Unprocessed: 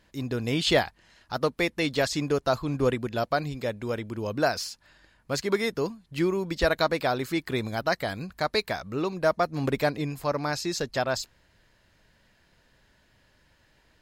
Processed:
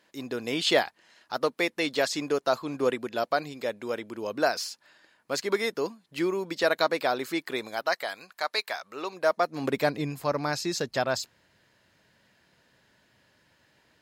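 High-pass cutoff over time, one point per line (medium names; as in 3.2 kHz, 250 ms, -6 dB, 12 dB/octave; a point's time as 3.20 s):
7.34 s 290 Hz
8.18 s 730 Hz
8.86 s 730 Hz
9.58 s 260 Hz
9.98 s 120 Hz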